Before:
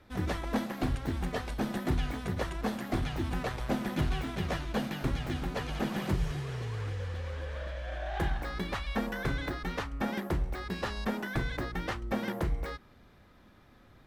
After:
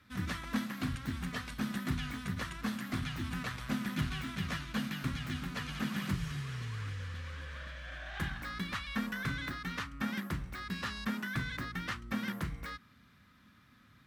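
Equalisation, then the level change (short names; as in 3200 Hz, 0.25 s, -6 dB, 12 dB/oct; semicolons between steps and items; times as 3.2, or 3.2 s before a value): HPF 57 Hz; low shelf 72 Hz -10.5 dB; band shelf 540 Hz -13.5 dB; 0.0 dB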